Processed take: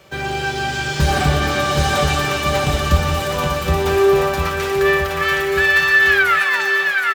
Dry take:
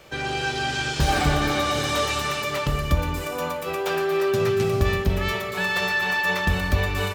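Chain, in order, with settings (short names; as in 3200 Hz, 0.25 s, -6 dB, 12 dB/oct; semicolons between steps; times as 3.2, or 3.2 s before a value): tape stop at the end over 1.06 s; comb 5.2 ms, depth 36%; in parallel at -10 dB: requantised 6-bit, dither none; on the sum: high-pass sweep 76 Hz -> 1600 Hz, 3.44–4.63; on a send: bouncing-ball echo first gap 0.77 s, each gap 0.9×, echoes 5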